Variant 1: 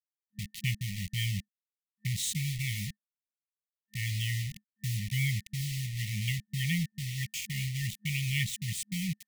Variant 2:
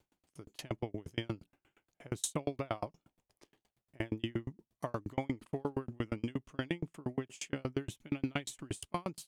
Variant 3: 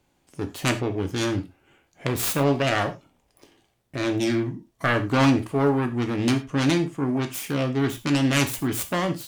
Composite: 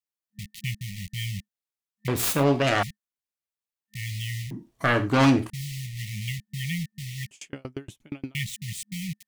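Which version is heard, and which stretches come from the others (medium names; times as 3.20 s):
1
2.08–2.83 s: from 3
4.51–5.50 s: from 3
7.31–8.35 s: from 2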